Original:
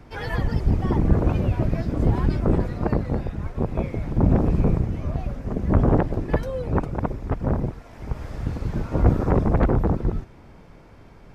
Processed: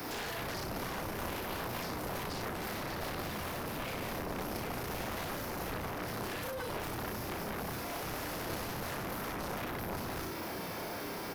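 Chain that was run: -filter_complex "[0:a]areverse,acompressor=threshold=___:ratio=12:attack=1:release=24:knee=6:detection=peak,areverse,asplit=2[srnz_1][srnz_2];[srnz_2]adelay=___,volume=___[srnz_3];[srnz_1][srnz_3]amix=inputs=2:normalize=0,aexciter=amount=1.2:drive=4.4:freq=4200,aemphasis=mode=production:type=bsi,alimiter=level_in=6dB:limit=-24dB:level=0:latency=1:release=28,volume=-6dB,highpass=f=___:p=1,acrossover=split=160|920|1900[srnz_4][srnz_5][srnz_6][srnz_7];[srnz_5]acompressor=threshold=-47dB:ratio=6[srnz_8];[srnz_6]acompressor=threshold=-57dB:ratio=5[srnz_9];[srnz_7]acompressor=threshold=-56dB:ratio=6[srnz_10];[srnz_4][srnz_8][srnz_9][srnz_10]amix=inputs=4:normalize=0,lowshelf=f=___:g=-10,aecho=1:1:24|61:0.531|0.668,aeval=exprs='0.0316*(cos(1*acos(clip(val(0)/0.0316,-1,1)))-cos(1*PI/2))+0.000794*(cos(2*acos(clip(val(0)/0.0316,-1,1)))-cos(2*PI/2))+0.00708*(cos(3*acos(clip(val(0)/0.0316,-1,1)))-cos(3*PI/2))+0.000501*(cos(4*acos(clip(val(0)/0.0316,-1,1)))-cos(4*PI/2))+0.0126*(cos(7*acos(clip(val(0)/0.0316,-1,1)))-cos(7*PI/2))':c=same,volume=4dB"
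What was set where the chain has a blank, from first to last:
-28dB, 34, -2dB, 48, 84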